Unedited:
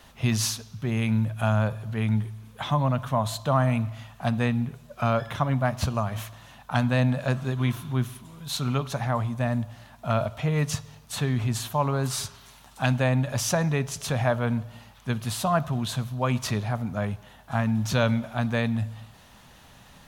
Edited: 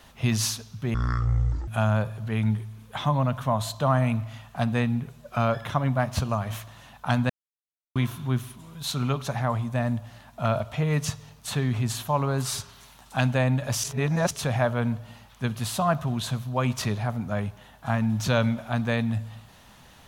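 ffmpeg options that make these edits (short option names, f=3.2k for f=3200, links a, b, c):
-filter_complex "[0:a]asplit=7[a][b][c][d][e][f][g];[a]atrim=end=0.944[h];[b]atrim=start=0.94:end=1.33,asetpts=PTS-STARTPTS,asetrate=23373,aresample=44100[i];[c]atrim=start=1.326:end=6.95,asetpts=PTS-STARTPTS,afade=t=out:st=5.62:d=0.004:c=hsin[j];[d]atrim=start=6.95:end=7.61,asetpts=PTS-STARTPTS,volume=0[k];[e]atrim=start=7.61:end=13.492,asetpts=PTS-STARTPTS,afade=t=in:d=0.004:c=hsin[l];[f]atrim=start=13.488:end=13.962,asetpts=PTS-STARTPTS,areverse[m];[g]atrim=start=13.958[n];[h][i]acrossfade=d=0.004:c1=hsin:c2=hsin[o];[j][k][l]concat=n=3:v=0:a=1[p];[o][p]acrossfade=d=0.004:c1=hsin:c2=hsin[q];[q][m]acrossfade=d=0.004:c1=hsin:c2=hsin[r];[r][n]acrossfade=d=0.004:c1=hsin:c2=hsin"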